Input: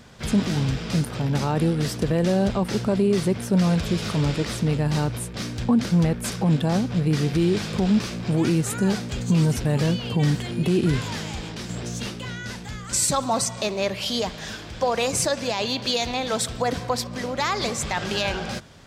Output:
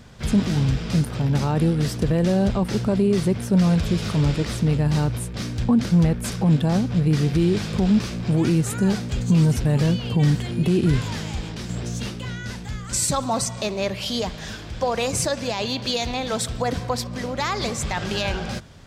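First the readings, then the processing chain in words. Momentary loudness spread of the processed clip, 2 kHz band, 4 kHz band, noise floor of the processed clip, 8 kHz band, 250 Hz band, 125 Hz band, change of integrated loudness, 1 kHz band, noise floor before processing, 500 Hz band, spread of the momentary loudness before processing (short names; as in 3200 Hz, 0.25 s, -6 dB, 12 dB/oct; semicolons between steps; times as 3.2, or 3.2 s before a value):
10 LU, -1.0 dB, -1.0 dB, -34 dBFS, -1.0 dB, +2.0 dB, +3.0 dB, +1.5 dB, -1.0 dB, -36 dBFS, -0.5 dB, 9 LU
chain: low shelf 140 Hz +8.5 dB; gain -1 dB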